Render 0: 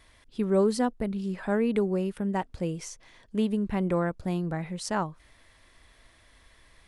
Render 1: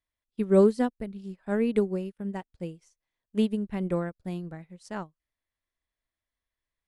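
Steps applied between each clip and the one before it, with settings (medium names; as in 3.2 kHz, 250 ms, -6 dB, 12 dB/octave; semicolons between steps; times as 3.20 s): dynamic bell 980 Hz, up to -5 dB, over -43 dBFS, Q 1.1; upward expansion 2.5:1, over -47 dBFS; trim +6 dB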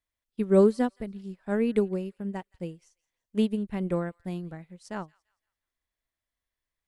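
feedback echo behind a high-pass 170 ms, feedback 34%, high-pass 1.9 kHz, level -22 dB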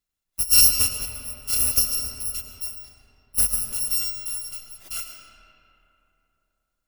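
bit-reversed sample order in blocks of 256 samples; reverberation RT60 3.1 s, pre-delay 65 ms, DRR 4 dB; trim +3.5 dB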